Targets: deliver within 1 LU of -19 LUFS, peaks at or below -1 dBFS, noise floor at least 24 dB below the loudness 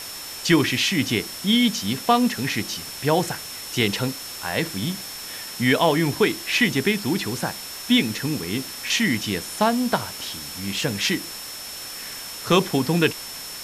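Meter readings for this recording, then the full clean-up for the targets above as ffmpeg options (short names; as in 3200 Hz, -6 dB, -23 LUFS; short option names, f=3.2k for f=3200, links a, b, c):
steady tone 5400 Hz; tone level -37 dBFS; noise floor -35 dBFS; noise floor target -47 dBFS; loudness -23.0 LUFS; peak -6.0 dBFS; loudness target -19.0 LUFS
-> -af "bandreject=f=5.4k:w=30"
-af "afftdn=nr=12:nf=-35"
-af "volume=4dB"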